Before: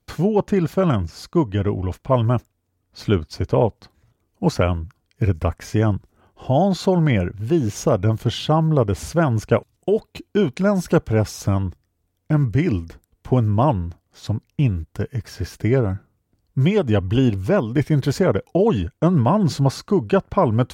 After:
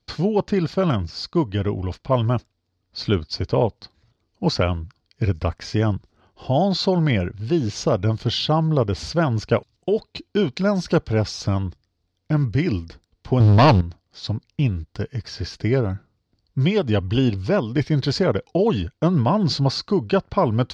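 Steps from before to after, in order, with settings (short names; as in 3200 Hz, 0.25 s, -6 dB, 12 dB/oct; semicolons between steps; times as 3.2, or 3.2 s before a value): 13.4–13.81 sample leveller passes 3; synth low-pass 4600 Hz, resonance Q 3.8; gain -2 dB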